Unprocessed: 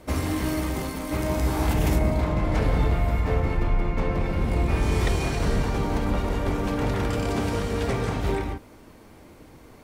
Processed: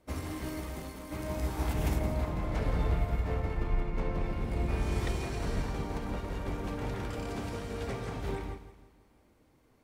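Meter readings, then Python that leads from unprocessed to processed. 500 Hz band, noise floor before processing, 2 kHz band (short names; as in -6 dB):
-9.5 dB, -49 dBFS, -10.0 dB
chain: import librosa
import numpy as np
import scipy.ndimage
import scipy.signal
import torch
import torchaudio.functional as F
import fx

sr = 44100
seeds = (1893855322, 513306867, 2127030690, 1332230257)

p1 = 10.0 ** (-29.5 / 20.0) * np.tanh(x / 10.0 ** (-29.5 / 20.0))
p2 = x + (p1 * librosa.db_to_amplitude(-11.0))
p3 = fx.echo_feedback(p2, sr, ms=166, feedback_pct=56, wet_db=-10.5)
p4 = fx.upward_expand(p3, sr, threshold_db=-40.0, expansion=1.5)
y = p4 * librosa.db_to_amplitude(-8.0)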